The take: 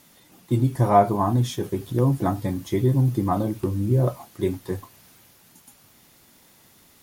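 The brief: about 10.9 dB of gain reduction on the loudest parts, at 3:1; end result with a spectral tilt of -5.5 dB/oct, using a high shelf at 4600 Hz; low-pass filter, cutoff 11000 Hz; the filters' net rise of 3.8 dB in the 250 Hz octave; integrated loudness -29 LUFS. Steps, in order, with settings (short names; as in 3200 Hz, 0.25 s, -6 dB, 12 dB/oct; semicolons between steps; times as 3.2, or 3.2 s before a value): LPF 11000 Hz; bell 250 Hz +5 dB; high shelf 4600 Hz -6 dB; compressor 3:1, threshold -27 dBFS; gain +1 dB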